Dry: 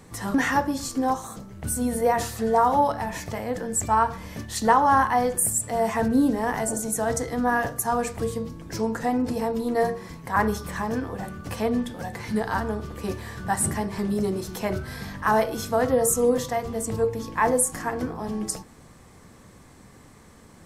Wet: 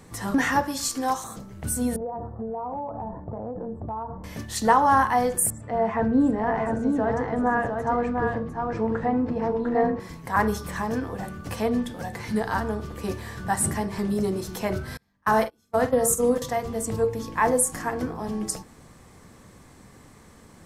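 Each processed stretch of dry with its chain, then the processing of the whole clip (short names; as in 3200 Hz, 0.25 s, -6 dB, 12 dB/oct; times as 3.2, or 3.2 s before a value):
0.63–1.24 tilt shelf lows -6 dB, about 880 Hz + mismatched tape noise reduction decoder only
1.96–4.24 inverse Chebyshev low-pass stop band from 2500 Hz, stop band 50 dB + compressor 10:1, threshold -28 dBFS
5.5–10 LPF 1900 Hz + echo 0.701 s -4.5 dB
14.97–16.42 gate -24 dBFS, range -35 dB + doubler 45 ms -10 dB
whole clip: dry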